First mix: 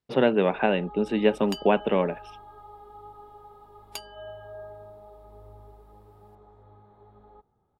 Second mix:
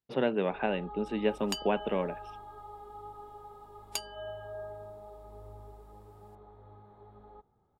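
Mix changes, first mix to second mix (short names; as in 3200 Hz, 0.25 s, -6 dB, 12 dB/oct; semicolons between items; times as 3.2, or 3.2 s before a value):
speech -7.5 dB; second sound: add bell 7300 Hz +6 dB 0.88 oct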